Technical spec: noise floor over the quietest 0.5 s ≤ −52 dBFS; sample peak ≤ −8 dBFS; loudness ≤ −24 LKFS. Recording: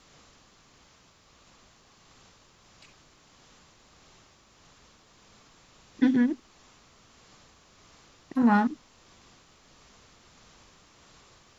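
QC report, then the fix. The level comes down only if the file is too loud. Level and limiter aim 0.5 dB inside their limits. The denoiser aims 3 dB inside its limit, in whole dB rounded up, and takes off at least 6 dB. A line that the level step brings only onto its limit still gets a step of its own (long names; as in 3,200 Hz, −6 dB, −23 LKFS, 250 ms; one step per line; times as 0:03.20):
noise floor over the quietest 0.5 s −60 dBFS: in spec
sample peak −11.5 dBFS: in spec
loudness −25.5 LKFS: in spec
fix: no processing needed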